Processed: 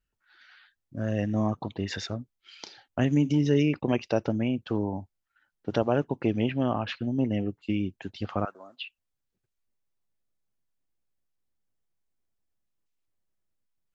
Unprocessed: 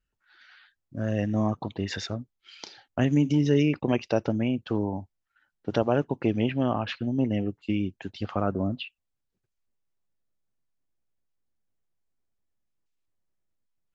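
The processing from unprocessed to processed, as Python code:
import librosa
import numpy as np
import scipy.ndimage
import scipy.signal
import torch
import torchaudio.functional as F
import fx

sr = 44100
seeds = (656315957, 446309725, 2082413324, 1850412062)

y = fx.highpass(x, sr, hz=1200.0, slope=12, at=(8.45, 8.85))
y = y * librosa.db_to_amplitude(-1.0)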